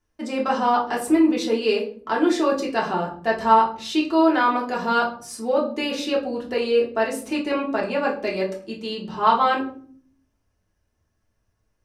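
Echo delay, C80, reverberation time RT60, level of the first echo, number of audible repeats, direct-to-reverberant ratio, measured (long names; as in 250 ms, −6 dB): no echo audible, 15.0 dB, 0.50 s, no echo audible, no echo audible, −4.0 dB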